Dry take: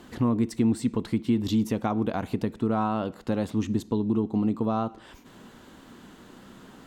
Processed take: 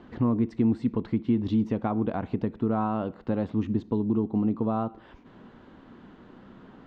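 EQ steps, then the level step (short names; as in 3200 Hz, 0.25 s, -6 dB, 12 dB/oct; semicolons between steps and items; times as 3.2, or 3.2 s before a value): air absorption 200 m; high shelf 2700 Hz -8 dB; 0.0 dB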